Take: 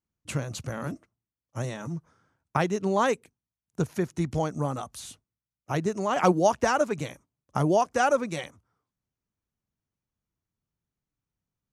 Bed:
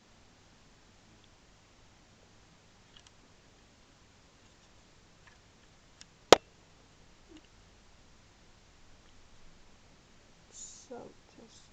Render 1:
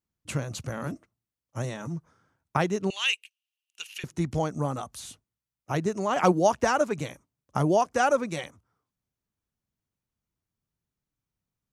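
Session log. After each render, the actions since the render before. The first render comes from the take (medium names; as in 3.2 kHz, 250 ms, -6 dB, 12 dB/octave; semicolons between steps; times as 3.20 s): 2.90–4.04 s: resonant high-pass 2.8 kHz, resonance Q 13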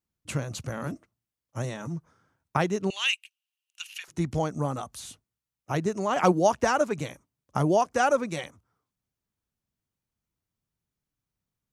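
3.08–4.08 s: high-pass 850 Hz 24 dB/octave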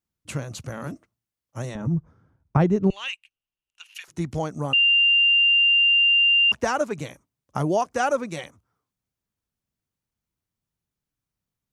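1.75–3.95 s: tilt EQ -4 dB/octave; 4.73–6.52 s: bleep 2.79 kHz -14.5 dBFS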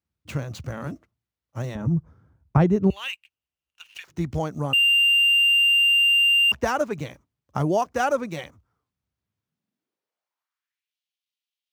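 median filter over 5 samples; high-pass sweep 63 Hz -> 3.1 kHz, 9.11–10.97 s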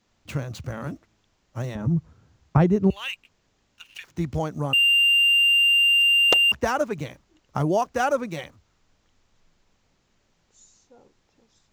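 add bed -7.5 dB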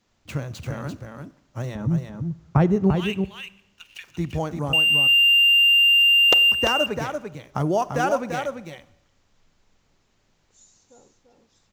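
delay 342 ms -6 dB; Schroeder reverb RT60 0.91 s, combs from 31 ms, DRR 18 dB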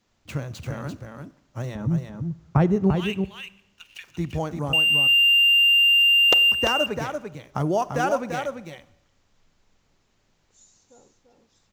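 trim -1 dB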